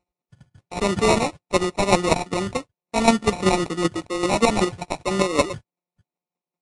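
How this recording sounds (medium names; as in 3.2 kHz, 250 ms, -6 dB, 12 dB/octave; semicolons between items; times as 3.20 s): a buzz of ramps at a fixed pitch in blocks of 8 samples; chopped level 5.2 Hz, depth 60%, duty 15%; aliases and images of a low sample rate 1.6 kHz, jitter 0%; Vorbis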